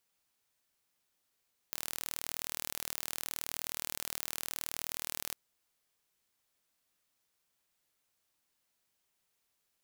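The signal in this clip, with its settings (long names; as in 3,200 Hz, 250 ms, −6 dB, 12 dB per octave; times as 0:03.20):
impulse train 39.2 per second, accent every 0, −10 dBFS 3.62 s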